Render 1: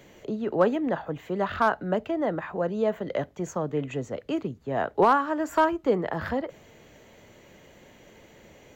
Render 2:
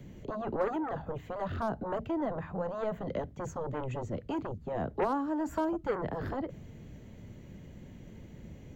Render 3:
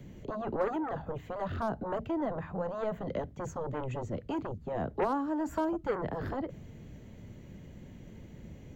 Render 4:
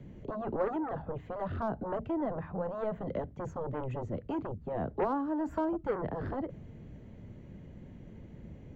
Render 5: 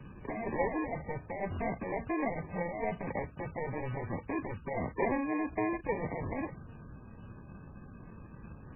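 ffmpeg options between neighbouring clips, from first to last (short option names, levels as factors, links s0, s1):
-filter_complex "[0:a]acrossover=split=240|990|4000[s0][s1][s2][s3];[s0]aeval=exprs='0.0562*sin(PI/2*6.31*val(0)/0.0562)':c=same[s4];[s2]acompressor=threshold=0.0112:ratio=6[s5];[s4][s1][s5][s3]amix=inputs=4:normalize=0,volume=0.376"
-af anull
-af "lowpass=f=1600:p=1"
-af "acrusher=samples=32:mix=1:aa=0.000001" -ar 11025 -c:a libmp3lame -b:a 8k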